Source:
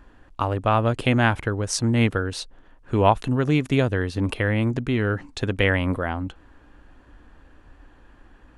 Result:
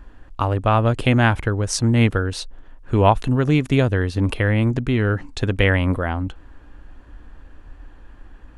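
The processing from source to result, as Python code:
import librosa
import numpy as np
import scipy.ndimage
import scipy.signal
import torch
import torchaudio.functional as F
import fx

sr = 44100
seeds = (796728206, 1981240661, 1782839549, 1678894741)

y = fx.low_shelf(x, sr, hz=74.0, db=9.5)
y = y * 10.0 ** (2.0 / 20.0)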